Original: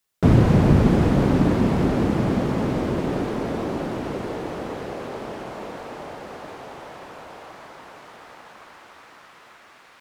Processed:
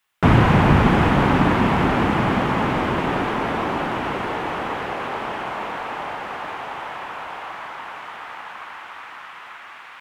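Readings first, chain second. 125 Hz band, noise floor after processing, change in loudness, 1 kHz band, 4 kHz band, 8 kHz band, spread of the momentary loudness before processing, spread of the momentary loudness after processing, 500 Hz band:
0.0 dB, -41 dBFS, +1.0 dB, +9.5 dB, +8.0 dB, 0.0 dB, 22 LU, 20 LU, +1.0 dB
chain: high-order bell 1.6 kHz +11 dB 2.4 oct

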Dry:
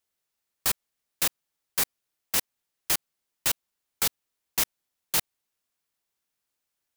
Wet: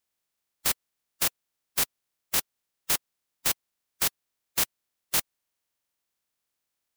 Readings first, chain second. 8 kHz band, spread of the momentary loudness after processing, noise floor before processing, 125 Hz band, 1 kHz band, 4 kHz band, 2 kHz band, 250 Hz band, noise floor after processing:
-0.5 dB, 4 LU, -83 dBFS, -1.0 dB, -0.5 dB, -0.5 dB, -0.5 dB, -0.5 dB, -83 dBFS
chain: spectral contrast reduction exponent 0.18; buffer glitch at 5.36 s, samples 2048, times 13

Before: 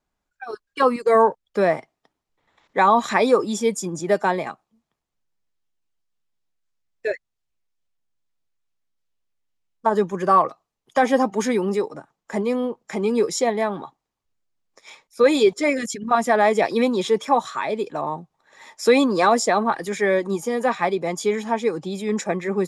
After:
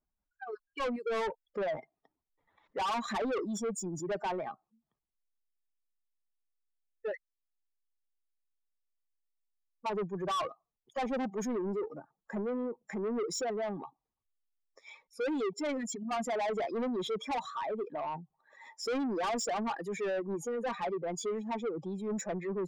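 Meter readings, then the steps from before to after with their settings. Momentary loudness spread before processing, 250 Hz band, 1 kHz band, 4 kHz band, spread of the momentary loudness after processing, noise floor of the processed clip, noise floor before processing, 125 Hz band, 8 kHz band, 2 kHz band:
11 LU, -12.5 dB, -15.0 dB, -11.5 dB, 10 LU, under -85 dBFS, -81 dBFS, -11.5 dB, -10.5 dB, -16.0 dB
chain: spectral contrast enhancement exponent 1.8; saturation -22.5 dBFS, distortion -7 dB; trim -7.5 dB

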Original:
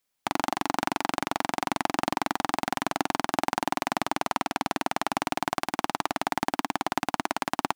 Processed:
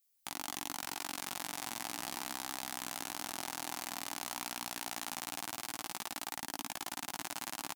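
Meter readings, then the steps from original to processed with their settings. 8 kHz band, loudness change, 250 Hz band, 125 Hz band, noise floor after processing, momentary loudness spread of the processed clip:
-1.0 dB, -10.5 dB, -17.0 dB, -15.5 dB, -69 dBFS, 1 LU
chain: pre-emphasis filter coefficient 0.9; doubling 17 ms -3 dB; delay 216 ms -7 dB; peak limiter -17 dBFS, peak gain reduction 6.5 dB; bass shelf 210 Hz +7.5 dB

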